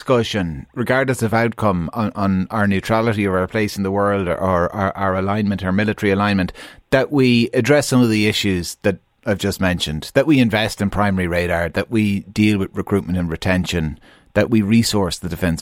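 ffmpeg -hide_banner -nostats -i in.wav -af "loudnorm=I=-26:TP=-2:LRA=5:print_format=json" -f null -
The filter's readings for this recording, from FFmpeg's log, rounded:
"input_i" : "-18.5",
"input_tp" : "-3.5",
"input_lra" : "2.0",
"input_thresh" : "-28.5",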